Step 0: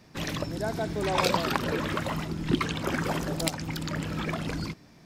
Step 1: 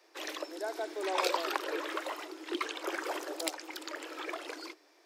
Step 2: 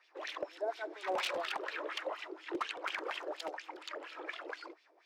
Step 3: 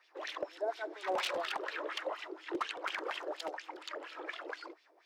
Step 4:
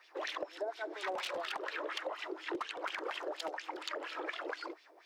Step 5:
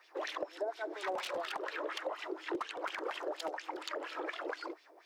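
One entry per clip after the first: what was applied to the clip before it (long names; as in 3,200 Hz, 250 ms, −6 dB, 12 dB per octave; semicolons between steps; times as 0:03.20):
Butterworth high-pass 310 Hz 96 dB per octave; level −5 dB
wrap-around overflow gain 25 dB; LFO wah 4.2 Hz 460–3,200 Hz, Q 2.5; level +5 dB
parametric band 2,400 Hz −2.5 dB 0.31 octaves; level +1 dB
downward compressor, threshold −41 dBFS, peak gain reduction 11 dB; level +5.5 dB
parametric band 3,000 Hz −4 dB 2.3 octaves; level +2 dB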